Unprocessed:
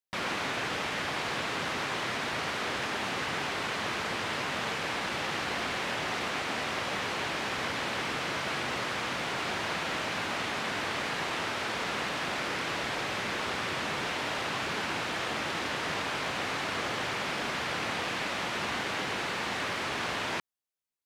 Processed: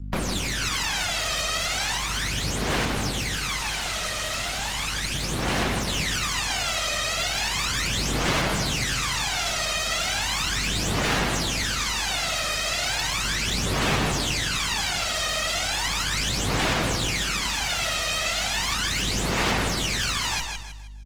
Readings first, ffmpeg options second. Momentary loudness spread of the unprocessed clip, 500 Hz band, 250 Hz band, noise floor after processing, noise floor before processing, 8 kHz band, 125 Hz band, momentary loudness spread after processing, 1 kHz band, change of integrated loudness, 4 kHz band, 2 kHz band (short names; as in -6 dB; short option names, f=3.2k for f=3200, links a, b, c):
0 LU, +3.5 dB, +7.0 dB, -29 dBFS, -34 dBFS, +15.5 dB, +13.0 dB, 3 LU, +3.0 dB, +7.5 dB, +9.5 dB, +4.5 dB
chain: -filter_complex "[0:a]aresample=32000,aresample=44100,aeval=exprs='val(0)+0.00355*(sin(2*PI*50*n/s)+sin(2*PI*2*50*n/s)/2+sin(2*PI*3*50*n/s)/3+sin(2*PI*4*50*n/s)/4+sin(2*PI*5*50*n/s)/5)':c=same,aeval=exprs='0.1*(cos(1*acos(clip(val(0)/0.1,-1,1)))-cos(1*PI/2))+0.000708*(cos(3*acos(clip(val(0)/0.1,-1,1)))-cos(3*PI/2))+0.00562*(cos(8*acos(clip(val(0)/0.1,-1,1)))-cos(8*PI/2))':c=same,acrossover=split=200|3000[a][b][c];[b]acompressor=threshold=-38dB:ratio=8[d];[a][d][c]amix=inputs=3:normalize=0,equalizer=f=10k:t=o:w=2.9:g=4,aphaser=in_gain=1:out_gain=1:delay=1.6:decay=0.78:speed=0.36:type=sinusoidal,asplit=2[e][f];[f]aecho=0:1:157|314|471|628:0.501|0.185|0.0686|0.0254[g];[e][g]amix=inputs=2:normalize=0,adynamicequalizer=threshold=0.00355:dfrequency=6800:dqfactor=2.3:tfrequency=6800:tqfactor=2.3:attack=5:release=100:ratio=0.375:range=2:mode=boostabove:tftype=bell,aeval=exprs='0.112*(abs(mod(val(0)/0.112+3,4)-2)-1)':c=same,volume=4dB" -ar 48000 -c:a libopus -b:a 20k